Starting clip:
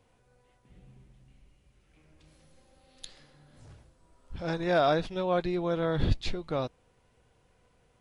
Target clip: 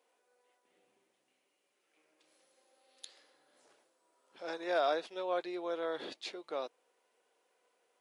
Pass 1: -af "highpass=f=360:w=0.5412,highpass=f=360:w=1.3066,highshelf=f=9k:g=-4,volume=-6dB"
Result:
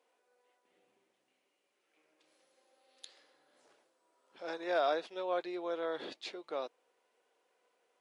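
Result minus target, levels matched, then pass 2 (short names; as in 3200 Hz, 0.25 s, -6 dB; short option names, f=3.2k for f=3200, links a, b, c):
8000 Hz band -3.0 dB
-af "highpass=f=360:w=0.5412,highpass=f=360:w=1.3066,highshelf=f=9k:g=5,volume=-6dB"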